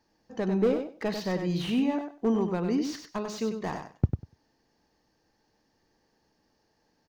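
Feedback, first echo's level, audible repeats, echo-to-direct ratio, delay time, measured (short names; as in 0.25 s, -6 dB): 16%, -7.0 dB, 2, -7.0 dB, 97 ms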